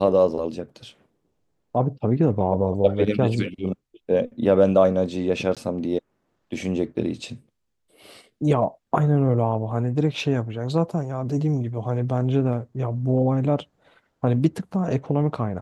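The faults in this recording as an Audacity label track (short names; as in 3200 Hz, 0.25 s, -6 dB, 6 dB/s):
5.550000	5.570000	gap 17 ms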